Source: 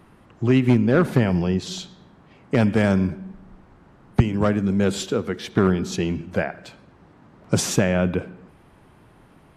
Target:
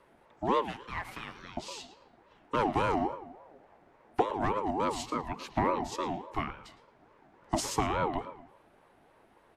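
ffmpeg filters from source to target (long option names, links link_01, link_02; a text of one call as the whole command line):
ffmpeg -i in.wav -filter_complex "[0:a]asettb=1/sr,asplit=3[link_01][link_02][link_03];[link_01]atrim=end=0.614[link_04];[link_02]atrim=start=0.61:end=1.57,asetpts=PTS-STARTPTS,afade=type=in:duration=0.004:curve=qsin,afade=type=out:start_time=0.956:duration=0.004:curve=qsin,highpass=930[link_05];[link_03]atrim=start=1.566[link_06];[link_04][link_05]acrossfade=duration=0.004:curve1=hsin:curve2=qsin[link_07];[link_07][link_06]acrossfade=duration=0.004:curve1=qsin:curve2=hsin,asplit=2[link_08][link_09];[link_09]adelay=111,lowpass=frequency=3500:poles=1,volume=-13dB,asplit=2[link_10][link_11];[link_11]adelay=111,lowpass=frequency=3500:poles=1,volume=0.32,asplit=2[link_12][link_13];[link_13]adelay=111,lowpass=frequency=3500:poles=1,volume=0.32[link_14];[link_10][link_12][link_14]amix=inputs=3:normalize=0[link_15];[link_08][link_15]amix=inputs=2:normalize=0,afreqshift=35,aeval=exprs='val(0)*sin(2*PI*620*n/s+620*0.25/3.5*sin(2*PI*3.5*n/s))':channel_layout=same,volume=-7.5dB" out.wav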